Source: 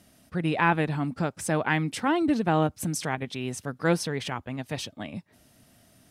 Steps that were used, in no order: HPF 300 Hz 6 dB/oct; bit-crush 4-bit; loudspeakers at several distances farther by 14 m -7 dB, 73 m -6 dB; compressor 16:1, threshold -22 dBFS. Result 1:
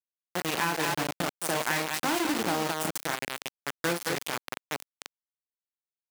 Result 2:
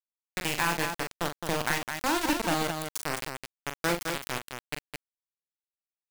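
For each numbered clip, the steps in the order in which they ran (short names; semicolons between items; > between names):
loudspeakers at several distances > bit-crush > compressor > HPF; HPF > bit-crush > compressor > loudspeakers at several distances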